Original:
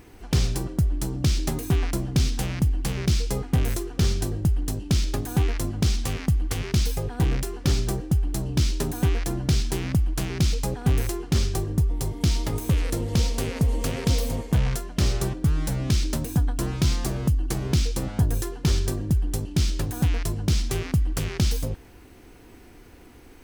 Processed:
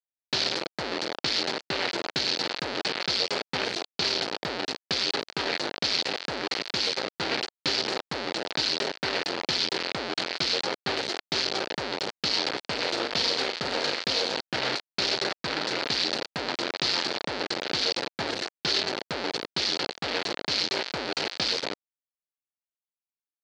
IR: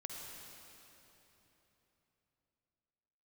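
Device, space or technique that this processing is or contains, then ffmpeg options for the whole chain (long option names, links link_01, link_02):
hand-held game console: -filter_complex "[0:a]acrusher=bits=3:mix=0:aa=0.000001,highpass=470,equalizer=frequency=720:width_type=q:width=4:gain=-3,equalizer=frequency=1100:width_type=q:width=4:gain=-6,equalizer=frequency=4400:width_type=q:width=4:gain=9,lowpass=frequency=4800:width=0.5412,lowpass=frequency=4800:width=1.3066,asettb=1/sr,asplit=3[link_01][link_02][link_03];[link_01]atrim=end=12.934[link_04];[link_02]atrim=start=12.93:end=14,asetpts=PTS-STARTPTS,afade=type=in:duration=0.004:curve=qsin,afade=type=out:start_time=1.066:duration=0.004:curve=qsin,asplit=2[link_05][link_06];[link_06]adelay=41,volume=-7.5dB[link_07];[link_05][link_07]amix=inputs=2:normalize=0,atrim=end_sample=47187[link_08];[link_03]atrim=start=13.996[link_09];[link_04][link_08]acrossfade=duration=0.004:curve1=hsin:curve2=qsin[link_10];[link_10][link_09]acrossfade=duration=0.004:curve1=qsin:curve2=hsin,volume=1.5dB"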